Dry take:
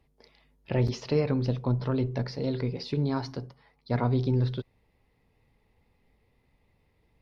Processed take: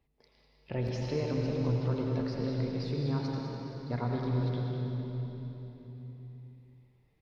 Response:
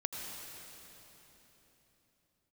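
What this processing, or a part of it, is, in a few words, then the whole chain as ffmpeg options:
cave: -filter_complex "[0:a]aecho=1:1:201:0.355[a];[1:a]atrim=start_sample=2205[b];[a][b]afir=irnorm=-1:irlink=0,volume=-6.5dB"

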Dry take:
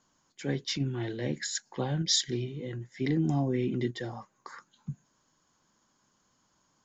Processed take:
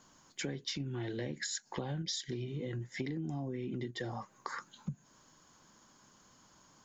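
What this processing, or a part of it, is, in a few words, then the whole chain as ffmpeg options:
serial compression, leveller first: -af "acompressor=threshold=-33dB:ratio=2.5,acompressor=threshold=-44dB:ratio=6,volume=8dB"

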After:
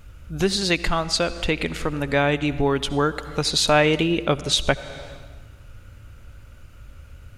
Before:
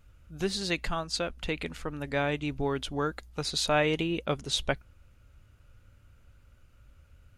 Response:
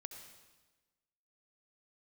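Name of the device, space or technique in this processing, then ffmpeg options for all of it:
compressed reverb return: -filter_complex "[0:a]asplit=2[a][b];[1:a]atrim=start_sample=2205[c];[b][c]afir=irnorm=-1:irlink=0,acompressor=threshold=-43dB:ratio=6,volume=7dB[d];[a][d]amix=inputs=2:normalize=0,volume=6.5dB"

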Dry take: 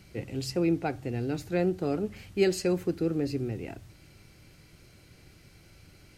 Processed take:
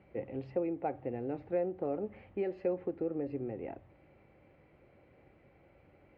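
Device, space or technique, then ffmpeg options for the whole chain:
bass amplifier: -af "acompressor=threshold=-28dB:ratio=5,highpass=68,equalizer=f=75:t=q:w=4:g=-5,equalizer=f=110:t=q:w=4:g=-9,equalizer=f=170:t=q:w=4:g=-7,equalizer=f=540:t=q:w=4:g=9,equalizer=f=810:t=q:w=4:g=6,equalizer=f=1.5k:t=q:w=4:g=-7,lowpass=f=2.1k:w=0.5412,lowpass=f=2.1k:w=1.3066,volume=-4dB"

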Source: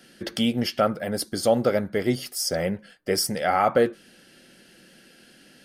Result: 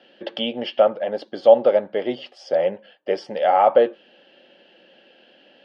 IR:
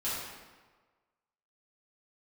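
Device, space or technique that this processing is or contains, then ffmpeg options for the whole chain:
phone earpiece: -af "highpass=340,equalizer=f=570:t=q:w=4:g=9,equalizer=f=850:t=q:w=4:g=7,equalizer=f=1.4k:t=q:w=4:g=-7,equalizer=f=2.1k:t=q:w=4:g=-6,equalizer=f=3k:t=q:w=4:g=6,lowpass=f=3.3k:w=0.5412,lowpass=f=3.3k:w=1.3066,volume=1dB"

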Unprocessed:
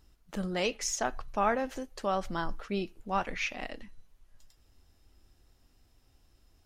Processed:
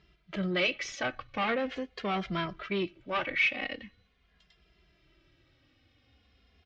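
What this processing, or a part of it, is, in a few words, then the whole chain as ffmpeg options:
barber-pole flanger into a guitar amplifier: -filter_complex "[0:a]asplit=2[a][b];[b]adelay=2.5,afreqshift=-0.43[c];[a][c]amix=inputs=2:normalize=1,asoftclip=type=tanh:threshold=-30.5dB,highpass=79,equalizer=f=100:t=q:w=4:g=-5,equalizer=f=240:t=q:w=4:g=-4,equalizer=f=440:t=q:w=4:g=-3,equalizer=f=880:t=q:w=4:g=-10,equalizer=f=2.2k:t=q:w=4:g=7,equalizer=f=3.2k:t=q:w=4:g=4,lowpass=f=4.2k:w=0.5412,lowpass=f=4.2k:w=1.3066,volume=8dB"

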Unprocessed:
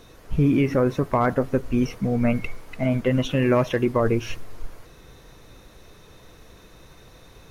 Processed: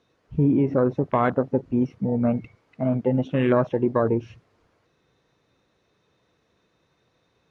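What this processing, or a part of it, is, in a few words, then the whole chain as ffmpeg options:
over-cleaned archive recording: -af "highpass=110,lowpass=5.2k,afwtdn=0.0355"

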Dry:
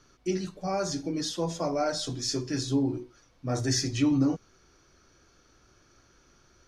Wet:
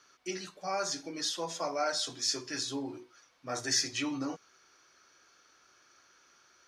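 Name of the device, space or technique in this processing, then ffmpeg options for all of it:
filter by subtraction: -filter_complex "[0:a]asplit=2[a][b];[b]lowpass=1.5k,volume=-1[c];[a][c]amix=inputs=2:normalize=0"

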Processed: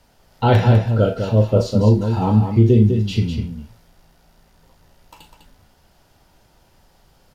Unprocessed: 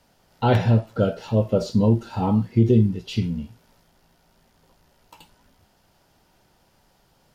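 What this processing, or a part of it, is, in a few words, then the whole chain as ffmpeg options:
low shelf boost with a cut just above: -af "lowshelf=f=98:g=8,equalizer=f=190:t=o:w=1:g=-3,aecho=1:1:37.9|201.2:0.355|0.447,volume=3dB"

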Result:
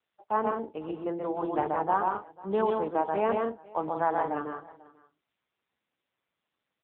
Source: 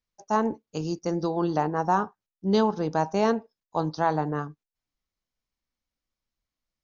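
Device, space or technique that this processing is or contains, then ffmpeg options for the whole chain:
satellite phone: -af "highpass=330,lowpass=3.2k,aecho=1:1:131.2|174.9:0.708|0.355,aecho=1:1:492:0.0794,volume=-2dB" -ar 8000 -c:a libopencore_amrnb -b:a 6700

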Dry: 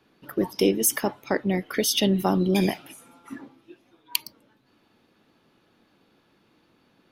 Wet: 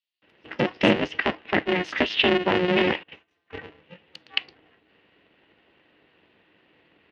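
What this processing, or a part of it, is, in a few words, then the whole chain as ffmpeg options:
ring modulator pedal into a guitar cabinet: -filter_complex "[0:a]asettb=1/sr,asplit=3[a][b][c];[a]atrim=end=2.814[d];[b]atrim=start=2.81:end=3.43,asetpts=PTS-STARTPTS,afade=t=in:d=0.004:c=qsin,afade=t=out:st=0.616:d=0.004:c=qsin,agate=range=-23dB:threshold=-45dB:ratio=16:detection=peak[e];[c]atrim=start=3.426[f];[d][e]acrossfade=d=0.004:c1=hsin:c2=qsin[g];[g][f]acrossfade=d=0.004:c1=qsin:c2=hsin,acrossover=split=5700[h][i];[h]adelay=220[j];[j][i]amix=inputs=2:normalize=0,aeval=exprs='val(0)*sgn(sin(2*PI*180*n/s))':c=same,highpass=100,equalizer=f=120:t=q:w=4:g=-6,equalizer=f=220:t=q:w=4:g=3,equalizer=f=310:t=q:w=4:g=7,equalizer=f=1.2k:t=q:w=4:g=-3,equalizer=f=1.9k:t=q:w=4:g=8,equalizer=f=2.8k:t=q:w=4:g=10,lowpass=f=3.7k:w=0.5412,lowpass=f=3.7k:w=1.3066"

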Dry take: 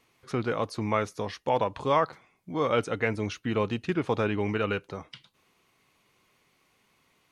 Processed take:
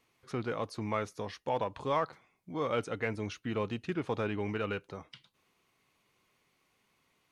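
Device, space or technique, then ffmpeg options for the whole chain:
parallel distortion: -filter_complex "[0:a]asplit=2[a][b];[b]asoftclip=type=hard:threshold=-26dB,volume=-13.5dB[c];[a][c]amix=inputs=2:normalize=0,volume=-7.5dB"

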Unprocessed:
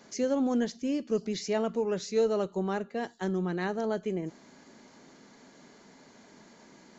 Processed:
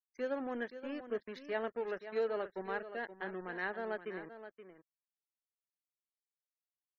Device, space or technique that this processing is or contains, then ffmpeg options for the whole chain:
pocket radio on a weak battery: -af "highpass=84,highpass=360,lowpass=3.4k,aeval=exprs='sgn(val(0))*max(abs(val(0))-0.00501,0)':c=same,equalizer=f=1.7k:t=o:w=0.55:g=8.5,afftfilt=real='re*gte(hypot(re,im),0.00316)':imag='im*gte(hypot(re,im),0.00316)':win_size=1024:overlap=0.75,aecho=1:1:524:0.266,volume=-6dB"

